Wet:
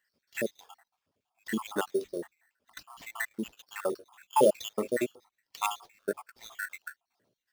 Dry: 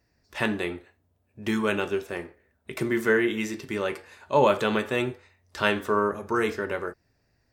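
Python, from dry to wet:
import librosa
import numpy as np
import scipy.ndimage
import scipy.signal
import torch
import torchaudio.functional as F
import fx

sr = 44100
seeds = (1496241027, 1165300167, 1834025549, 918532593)

y = fx.spec_dropout(x, sr, seeds[0], share_pct=80)
y = scipy.signal.sosfilt(scipy.signal.butter(2, 230.0, 'highpass', fs=sr, output='sos'), y)
y = fx.sample_hold(y, sr, seeds[1], rate_hz=10000.0, jitter_pct=0)
y = y * 10.0 ** (1.0 / 20.0)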